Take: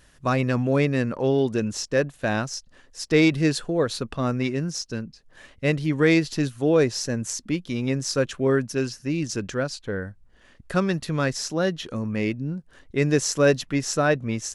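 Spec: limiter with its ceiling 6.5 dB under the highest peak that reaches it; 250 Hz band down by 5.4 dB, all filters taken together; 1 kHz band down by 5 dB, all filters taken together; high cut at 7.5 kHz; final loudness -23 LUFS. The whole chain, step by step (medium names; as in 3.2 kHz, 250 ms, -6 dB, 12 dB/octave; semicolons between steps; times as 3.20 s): low-pass 7.5 kHz; peaking EQ 250 Hz -7 dB; peaking EQ 1 kHz -7 dB; trim +6 dB; peak limiter -10 dBFS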